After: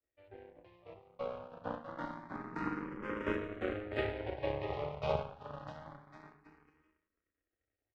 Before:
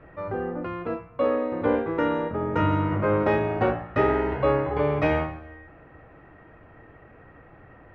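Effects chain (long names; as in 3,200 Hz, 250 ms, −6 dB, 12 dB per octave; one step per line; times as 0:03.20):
bouncing-ball delay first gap 650 ms, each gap 0.7×, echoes 5
power curve on the samples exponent 2
frequency shifter mixed with the dry sound +0.26 Hz
level −5.5 dB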